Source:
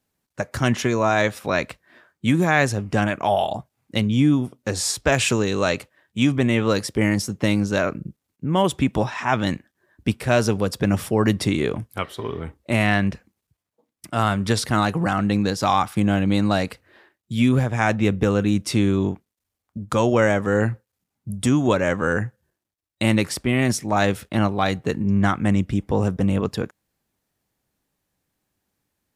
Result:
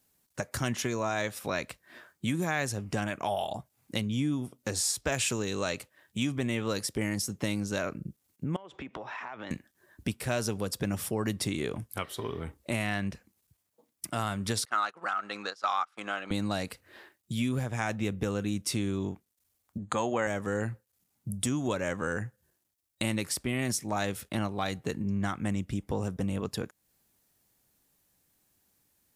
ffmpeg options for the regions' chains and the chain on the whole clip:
-filter_complex "[0:a]asettb=1/sr,asplit=3[s0][s1][s2];[s0]atrim=end=8.564[s3];[s1]atrim=start=8.56:end=9.51,asetpts=PTS-STARTPTS,afade=t=in:d=0.004:c=qsin,afade=t=out:st=0.946:d=0.004:c=qsin,lowpass=f=7100:w=0.5412,lowpass=f=7100:w=1.3066,acrossover=split=310 2800:gain=0.178 1 0.112[s4][s5][s6];[s4][s5][s6]amix=inputs=3:normalize=0,acompressor=threshold=0.02:ratio=16:attack=3.2:release=140:knee=1:detection=peak[s7];[s2]atrim=start=9.506[s8];[s3][s7]acrossfade=d=0.004:c1=hsin:c2=qsin[s9];[s9][s8]acrossfade=d=0.004:c1=qsin:c2=hsin,asettb=1/sr,asplit=3[s10][s11][s12];[s10]atrim=end=14.654[s13];[s11]atrim=start=14.65:end=16.31,asetpts=PTS-STARTPTS,afade=t=in:d=0.004:c=qsin,afade=t=out:st=1.656:d=0.004:c=qsin,agate=range=0.112:threshold=0.0794:ratio=16:release=100:detection=peak,highpass=640,lowpass=5000,equalizer=f=1300:w=3.8:g=11.5[s14];[s12]atrim=start=16.306[s15];[s13][s14]acrossfade=d=0.004:c1=hsin:c2=qsin[s16];[s16][s15]acrossfade=d=0.004:c1=qsin:c2=hsin,asettb=1/sr,asplit=3[s17][s18][s19];[s17]atrim=end=19.784[s20];[s18]atrim=start=19.78:end=20.27,asetpts=PTS-STARTPTS,afade=t=in:d=0.004:c=qsin,afade=t=out:st=0.486:d=0.004:c=qsin,asuperstop=centerf=5400:order=8:qfactor=3.3,highpass=100,equalizer=f=120:t=q:w=4:g=-4,equalizer=f=780:t=q:w=4:g=8,equalizer=f=1100:t=q:w=4:g=4,equalizer=f=1800:t=q:w=4:g=6,equalizer=f=6300:t=q:w=4:g=3,lowpass=f=8200:w=0.5412,lowpass=f=8200:w=1.3066[s21];[s19]atrim=start=20.266[s22];[s20][s21]acrossfade=d=0.004:c1=hsin:c2=qsin[s23];[s23][s22]acrossfade=d=0.004:c1=qsin:c2=hsin,highshelf=f=5300:g=11,acompressor=threshold=0.0141:ratio=2"

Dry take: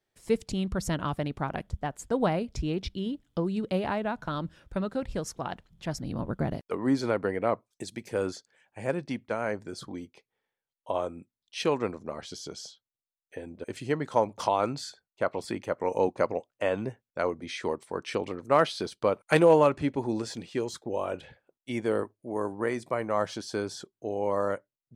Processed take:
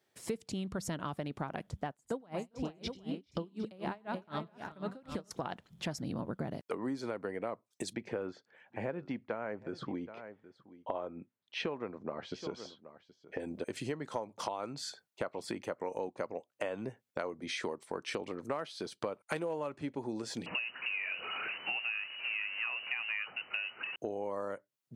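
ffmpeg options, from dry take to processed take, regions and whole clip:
-filter_complex "[0:a]asettb=1/sr,asplit=3[s0][s1][s2];[s0]atrim=end=1.894[s3];[s1]atrim=start=1.89:end=5.31,asetpts=PTS-STARTPTS,afade=t=in:d=0.004:c=qsin,afade=t=out:st=3.416:d=0.004:c=qsin,aecho=1:1:95|96|401|428|760:0.133|0.211|0.2|0.376|0.158,atrim=end_sample=150822,aeval=exprs='val(0)*pow(10,-31*(0.5-0.5*cos(2*PI*4*n/s))/20)':c=same[s4];[s2]atrim=start=5.306[s5];[s3][s4]acrossfade=d=0.004:c1=hsin:c2=qsin[s6];[s6][s5]acrossfade=d=0.004:c1=qsin:c2=hsin,asettb=1/sr,asplit=3[s7][s8][s9];[s7]atrim=end=7.934[s10];[s8]atrim=start=7.93:end=13.4,asetpts=PTS-STARTPTS,afade=t=in:d=0.004:c=qsin,afade=t=out:st=5.466:d=0.004:c=qsin,lowpass=2400,aecho=1:1:773:0.0708,atrim=end_sample=241227[s11];[s9]atrim=start=13.396[s12];[s10][s11]acrossfade=d=0.004:c1=hsin:c2=qsin[s13];[s13][s12]acrossfade=d=0.004:c1=qsin:c2=hsin,asettb=1/sr,asplit=3[s14][s15][s16];[s14]atrim=end=20.464[s17];[s15]atrim=start=20.46:end=23.96,asetpts=PTS-STARTPTS,afade=t=in:d=0.004:c=qsin,afade=t=out:st=3.496:d=0.004:c=qsin,aeval=exprs='val(0)+0.5*0.0188*sgn(val(0))':c=same,lowpass=f=2600:t=q:w=0.5098,lowpass=f=2600:t=q:w=0.6013,lowpass=f=2600:t=q:w=0.9,lowpass=f=2600:t=q:w=2.563,afreqshift=-3000[s18];[s16]atrim=start=23.956[s19];[s17][s18]acrossfade=d=0.004:c1=hsin:c2=qsin[s20];[s20][s19]acrossfade=d=0.004:c1=qsin:c2=hsin,highpass=130,acompressor=threshold=0.01:ratio=8,volume=1.88"

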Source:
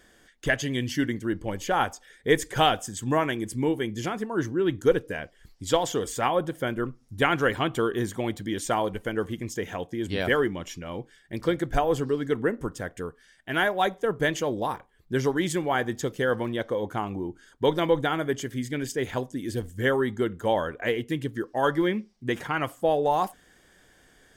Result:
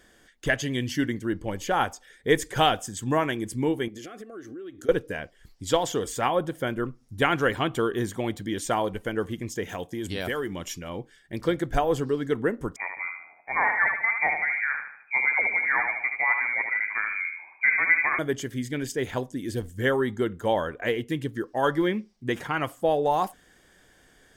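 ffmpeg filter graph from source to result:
-filter_complex "[0:a]asettb=1/sr,asplit=3[s0][s1][s2];[s0]atrim=end=3.884[s3];[s1]atrim=start=3.88:end=4.89,asetpts=PTS-STARTPTS,afade=t=in:d=0.004:c=qsin,afade=t=out:st=1.006:d=0.004:c=qsin,lowshelf=f=220:t=q:w=1.5:g=-8.5,acompressor=threshold=0.0141:ratio=8:attack=3.2:release=140:knee=1:detection=peak,asuperstop=centerf=930:order=12:qfactor=3.7[s4];[s2]atrim=start=4.886[s5];[s3][s4]acrossfade=d=0.004:c1=hsin:c2=qsin[s6];[s6][s5]acrossfade=d=0.004:c1=qsin:c2=hsin,asettb=1/sr,asplit=3[s7][s8][s9];[s7]atrim=end=9.694[s10];[s8]atrim=start=9.69:end=10.89,asetpts=PTS-STARTPTS,afade=t=in:d=0.004:c=qsin,afade=t=out:st=1.196:d=0.004:c=qsin,acompressor=threshold=0.0447:ratio=3:attack=3.2:release=140:knee=1:detection=peak,aemphasis=mode=production:type=cd[s11];[s9]atrim=start=10.886[s12];[s10][s11]acrossfade=d=0.004:c1=hsin:c2=qsin[s13];[s13][s12]acrossfade=d=0.004:c1=qsin:c2=hsin,asettb=1/sr,asplit=3[s14][s15][s16];[s14]atrim=end=12.764[s17];[s15]atrim=start=12.76:end=18.19,asetpts=PTS-STARTPTS,afade=t=in:d=0.004:c=qsin,afade=t=out:st=5.426:d=0.004:c=qsin,lowpass=f=2100:t=q:w=0.5098,lowpass=f=2100:t=q:w=0.6013,lowpass=f=2100:t=q:w=0.9,lowpass=f=2100:t=q:w=2.563,afreqshift=-2500,aecho=1:1:75|150|225|300|375:0.531|0.234|0.103|0.0452|0.0199,atrim=end_sample=239463[s18];[s16]atrim=start=18.186[s19];[s17][s18]acrossfade=d=0.004:c1=hsin:c2=qsin[s20];[s20][s19]acrossfade=d=0.004:c1=qsin:c2=hsin"

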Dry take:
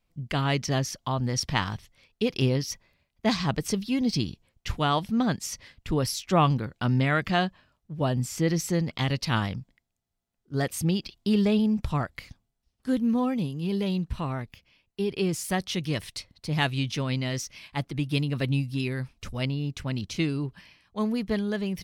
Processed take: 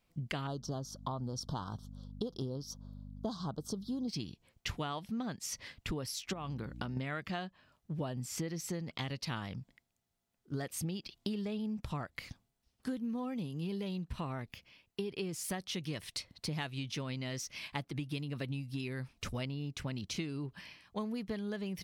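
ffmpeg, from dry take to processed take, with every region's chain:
-filter_complex "[0:a]asettb=1/sr,asplit=3[s0][s1][s2];[s0]atrim=end=0.474[s3];[s1]atrim=start=0.47:end=4.08,asetpts=PTS-STARTPTS,afade=t=in:d=0.004:c=qsin,afade=t=out:st=3.606:d=0.004:c=qsin,equalizer=f=11000:t=o:w=2.7:g=-6,aeval=exprs='val(0)+0.00631*(sin(2*PI*50*n/s)+sin(2*PI*2*50*n/s)/2+sin(2*PI*3*50*n/s)/3+sin(2*PI*4*50*n/s)/4+sin(2*PI*5*50*n/s)/5)':c=same,asuperstop=centerf=2200:order=8:qfactor=1.1[s4];[s2]atrim=start=4.076[s5];[s3][s4]acrossfade=d=0.004:c1=hsin:c2=qsin[s6];[s6][s5]acrossfade=d=0.004:c1=qsin:c2=hsin,asettb=1/sr,asplit=3[s7][s8][s9];[s7]atrim=end=6.334[s10];[s8]atrim=start=6.33:end=6.97,asetpts=PTS-STARTPTS,afade=t=in:d=0.004:c=qsin,afade=t=out:st=0.636:d=0.004:c=qsin,acompressor=threshold=0.0316:ratio=6:attack=3.2:release=140:knee=1:detection=peak,aeval=exprs='val(0)+0.00708*(sin(2*PI*60*n/s)+sin(2*PI*2*60*n/s)/2+sin(2*PI*3*60*n/s)/3+sin(2*PI*4*60*n/s)/4+sin(2*PI*5*60*n/s)/5)':c=same[s11];[s9]atrim=start=6.966[s12];[s10][s11]acrossfade=d=0.004:c1=hsin:c2=qsin[s13];[s13][s12]acrossfade=d=0.004:c1=qsin:c2=hsin,lowshelf=f=60:g=-10.5,acompressor=threshold=0.0141:ratio=10,volume=1.26"

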